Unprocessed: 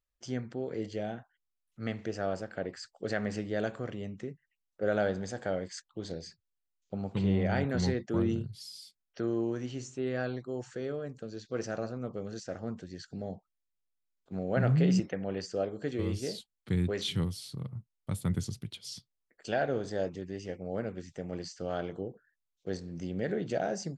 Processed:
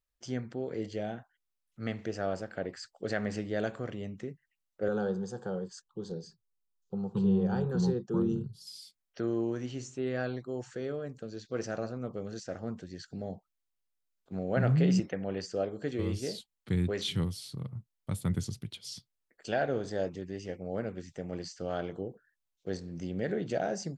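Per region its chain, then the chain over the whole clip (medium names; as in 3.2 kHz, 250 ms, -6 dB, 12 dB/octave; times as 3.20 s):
4.88–8.67 s: tilt shelf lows +4 dB, about 840 Hz + static phaser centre 420 Hz, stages 8
whole clip: none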